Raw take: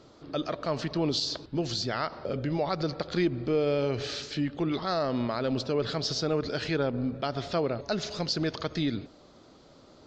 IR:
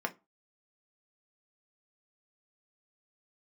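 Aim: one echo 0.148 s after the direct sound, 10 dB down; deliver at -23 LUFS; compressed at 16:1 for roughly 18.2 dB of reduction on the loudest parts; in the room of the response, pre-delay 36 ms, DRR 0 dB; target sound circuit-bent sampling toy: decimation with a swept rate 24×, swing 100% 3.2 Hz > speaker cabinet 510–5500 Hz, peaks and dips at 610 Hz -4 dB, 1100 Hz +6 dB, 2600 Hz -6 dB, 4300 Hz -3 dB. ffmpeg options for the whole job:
-filter_complex "[0:a]acompressor=threshold=-41dB:ratio=16,aecho=1:1:148:0.316,asplit=2[a][b];[1:a]atrim=start_sample=2205,adelay=36[c];[b][c]afir=irnorm=-1:irlink=0,volume=-5dB[d];[a][d]amix=inputs=2:normalize=0,acrusher=samples=24:mix=1:aa=0.000001:lfo=1:lforange=24:lforate=3.2,highpass=510,equalizer=f=610:t=q:w=4:g=-4,equalizer=f=1.1k:t=q:w=4:g=6,equalizer=f=2.6k:t=q:w=4:g=-6,equalizer=f=4.3k:t=q:w=4:g=-3,lowpass=f=5.5k:w=0.5412,lowpass=f=5.5k:w=1.3066,volume=23.5dB"

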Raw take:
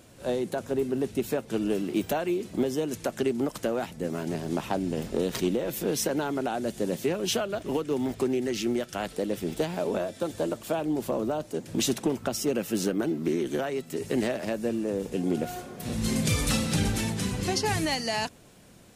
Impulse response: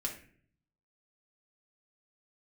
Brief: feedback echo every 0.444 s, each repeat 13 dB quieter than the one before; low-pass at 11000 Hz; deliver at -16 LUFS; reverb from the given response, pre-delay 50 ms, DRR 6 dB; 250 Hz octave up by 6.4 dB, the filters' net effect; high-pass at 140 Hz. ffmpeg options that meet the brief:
-filter_complex "[0:a]highpass=140,lowpass=11k,equalizer=f=250:t=o:g=8.5,aecho=1:1:444|888|1332:0.224|0.0493|0.0108,asplit=2[a][b];[1:a]atrim=start_sample=2205,adelay=50[c];[b][c]afir=irnorm=-1:irlink=0,volume=-7.5dB[d];[a][d]amix=inputs=2:normalize=0,volume=7.5dB"

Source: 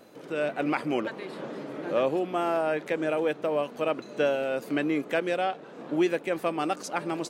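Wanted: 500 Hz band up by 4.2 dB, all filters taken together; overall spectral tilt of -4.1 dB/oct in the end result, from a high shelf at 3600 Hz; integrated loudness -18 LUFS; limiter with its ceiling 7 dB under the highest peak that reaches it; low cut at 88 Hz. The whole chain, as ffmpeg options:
-af "highpass=88,equalizer=f=500:t=o:g=5,highshelf=f=3.6k:g=3.5,volume=10.5dB,alimiter=limit=-7.5dB:level=0:latency=1"

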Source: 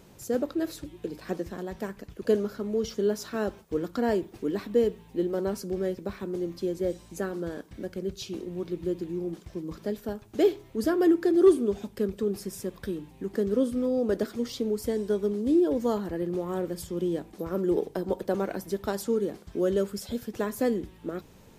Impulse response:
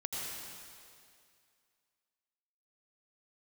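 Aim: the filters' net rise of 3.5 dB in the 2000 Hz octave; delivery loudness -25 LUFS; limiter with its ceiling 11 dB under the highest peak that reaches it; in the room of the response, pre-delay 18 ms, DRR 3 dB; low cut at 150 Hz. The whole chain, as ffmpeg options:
-filter_complex "[0:a]highpass=150,equalizer=f=2k:t=o:g=4.5,alimiter=limit=-20.5dB:level=0:latency=1,asplit=2[a][b];[1:a]atrim=start_sample=2205,adelay=18[c];[b][c]afir=irnorm=-1:irlink=0,volume=-5.5dB[d];[a][d]amix=inputs=2:normalize=0,volume=5dB"

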